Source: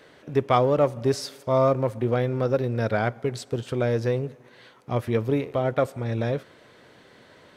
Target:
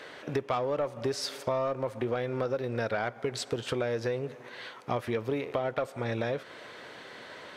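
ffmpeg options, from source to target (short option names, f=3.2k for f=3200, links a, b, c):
-filter_complex "[0:a]asplit=2[a][b];[b]highpass=f=720:p=1,volume=13dB,asoftclip=type=tanh:threshold=-7dB[c];[a][c]amix=inputs=2:normalize=0,lowpass=f=4.9k:p=1,volume=-6dB,acompressor=threshold=-29dB:ratio=6,volume=1dB"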